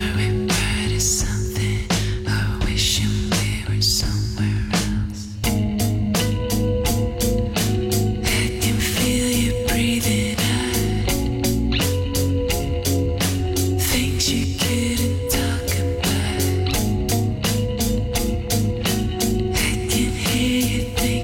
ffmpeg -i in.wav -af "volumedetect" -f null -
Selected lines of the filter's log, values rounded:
mean_volume: -20.3 dB
max_volume: -6.4 dB